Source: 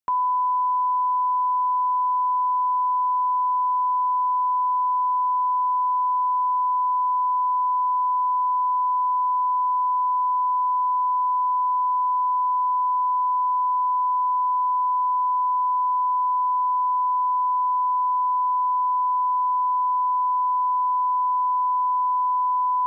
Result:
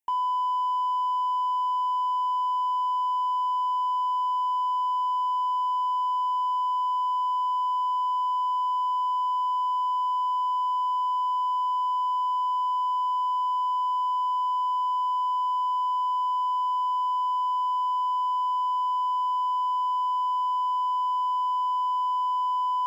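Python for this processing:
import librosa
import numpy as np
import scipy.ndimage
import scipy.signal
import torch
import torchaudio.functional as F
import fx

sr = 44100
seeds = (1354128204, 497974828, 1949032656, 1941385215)

y = fx.peak_eq(x, sr, hz=980.0, db=-8.0, octaves=0.77)
y = fx.hum_notches(y, sr, base_hz=60, count=7)
y = 10.0 ** (-30.5 / 20.0) * np.tanh(y / 10.0 ** (-30.5 / 20.0))
y = fx.fixed_phaser(y, sr, hz=860.0, stages=8)
y = np.clip(10.0 ** (33.5 / 20.0) * y, -1.0, 1.0) / 10.0 ** (33.5 / 20.0)
y = fx.small_body(y, sr, hz=(900.0,), ring_ms=30, db=14)
y = F.gain(torch.from_numpy(y), 3.5).numpy()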